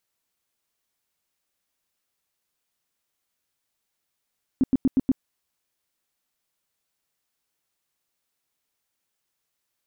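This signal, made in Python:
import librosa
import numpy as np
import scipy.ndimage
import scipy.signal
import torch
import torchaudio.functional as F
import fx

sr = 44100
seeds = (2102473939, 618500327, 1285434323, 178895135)

y = fx.tone_burst(sr, hz=263.0, cycles=7, every_s=0.12, bursts=5, level_db=-15.0)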